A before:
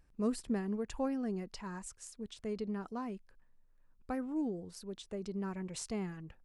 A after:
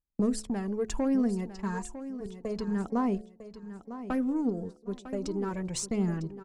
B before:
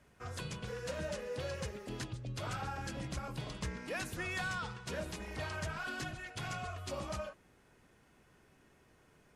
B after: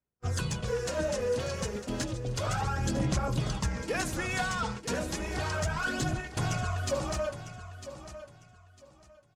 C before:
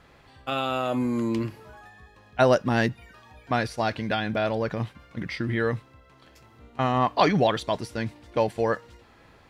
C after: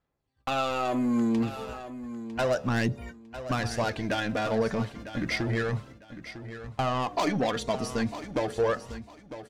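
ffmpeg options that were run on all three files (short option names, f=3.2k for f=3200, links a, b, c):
-filter_complex "[0:a]asplit=2[a][b];[b]adynamicsmooth=sensitivity=3:basefreq=1.5k,volume=-1.5dB[c];[a][c]amix=inputs=2:normalize=0,agate=range=-39dB:threshold=-41dB:ratio=16:detection=peak,equalizer=f=6.6k:w=0.99:g=8,acompressor=threshold=-32dB:ratio=2.5,asoftclip=type=tanh:threshold=-26.5dB,bandreject=f=72:t=h:w=4,bandreject=f=144:t=h:w=4,bandreject=f=216:t=h:w=4,bandreject=f=288:t=h:w=4,bandreject=f=360:t=h:w=4,bandreject=f=432:t=h:w=4,bandreject=f=504:t=h:w=4,bandreject=f=576:t=h:w=4,bandreject=f=648:t=h:w=4,bandreject=f=720:t=h:w=4,aphaser=in_gain=1:out_gain=1:delay=4.5:decay=0.44:speed=0.32:type=sinusoidal,aecho=1:1:952|1904|2856:0.237|0.0569|0.0137,volume=5dB"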